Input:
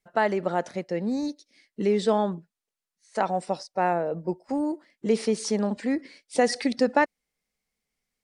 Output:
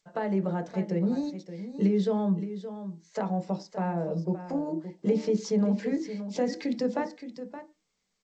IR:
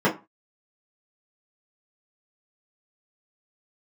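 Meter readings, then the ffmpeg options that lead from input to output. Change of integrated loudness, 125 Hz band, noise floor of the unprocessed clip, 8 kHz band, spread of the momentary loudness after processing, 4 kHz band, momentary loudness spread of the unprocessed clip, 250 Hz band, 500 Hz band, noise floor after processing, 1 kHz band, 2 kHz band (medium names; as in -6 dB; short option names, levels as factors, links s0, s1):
-3.0 dB, +5.0 dB, under -85 dBFS, -9.5 dB, 13 LU, -8.5 dB, 9 LU, +0.5 dB, -4.5 dB, -78 dBFS, -9.0 dB, -11.5 dB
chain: -filter_complex "[0:a]acrossover=split=250[s0][s1];[s1]acompressor=threshold=0.0178:ratio=3[s2];[s0][s2]amix=inputs=2:normalize=0,aecho=1:1:571:0.266,asplit=2[s3][s4];[1:a]atrim=start_sample=2205,highshelf=f=4100:g=-4.5[s5];[s4][s5]afir=irnorm=-1:irlink=0,volume=0.1[s6];[s3][s6]amix=inputs=2:normalize=0,volume=0.794" -ar 16000 -c:a g722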